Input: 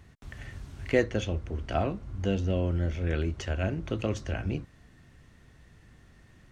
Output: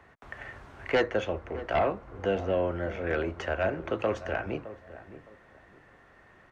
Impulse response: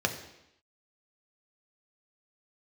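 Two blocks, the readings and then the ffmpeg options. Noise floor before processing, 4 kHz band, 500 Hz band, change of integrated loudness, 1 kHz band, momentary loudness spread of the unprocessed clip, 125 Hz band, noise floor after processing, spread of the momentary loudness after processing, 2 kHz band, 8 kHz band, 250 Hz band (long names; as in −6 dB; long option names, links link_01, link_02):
−57 dBFS, 0.0 dB, +3.5 dB, +0.5 dB, +6.0 dB, 15 LU, −9.0 dB, −58 dBFS, 17 LU, +4.0 dB, can't be measured, −3.0 dB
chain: -filter_complex "[0:a]lowshelf=frequency=230:gain=-9,acrossover=split=110|430|2100[link_01][link_02][link_03][link_04];[link_03]aeval=exprs='0.126*sin(PI/2*2.82*val(0)/0.126)':channel_layout=same[link_05];[link_01][link_02][link_05][link_04]amix=inputs=4:normalize=0,highshelf=frequency=3400:gain=-8.5,asplit=2[link_06][link_07];[link_07]adelay=613,lowpass=frequency=980:poles=1,volume=-13.5dB,asplit=2[link_08][link_09];[link_09]adelay=613,lowpass=frequency=980:poles=1,volume=0.29,asplit=2[link_10][link_11];[link_11]adelay=613,lowpass=frequency=980:poles=1,volume=0.29[link_12];[link_06][link_08][link_10][link_12]amix=inputs=4:normalize=0,volume=-2dB"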